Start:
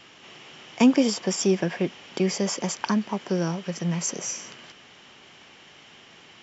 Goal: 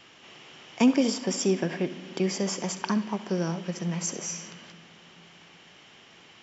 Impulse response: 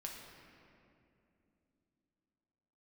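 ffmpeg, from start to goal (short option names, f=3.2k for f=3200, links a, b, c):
-filter_complex "[0:a]asplit=2[a][b];[1:a]atrim=start_sample=2205,adelay=67[c];[b][c]afir=irnorm=-1:irlink=0,volume=-10.5dB[d];[a][d]amix=inputs=2:normalize=0,volume=-3dB"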